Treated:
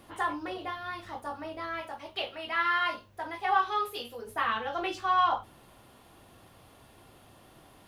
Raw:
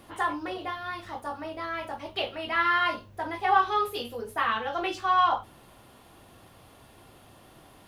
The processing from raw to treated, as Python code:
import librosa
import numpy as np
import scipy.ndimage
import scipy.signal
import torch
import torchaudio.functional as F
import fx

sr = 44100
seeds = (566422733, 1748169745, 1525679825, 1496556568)

y = fx.low_shelf(x, sr, hz=440.0, db=-7.0, at=(1.81, 4.27))
y = y * librosa.db_to_amplitude(-2.5)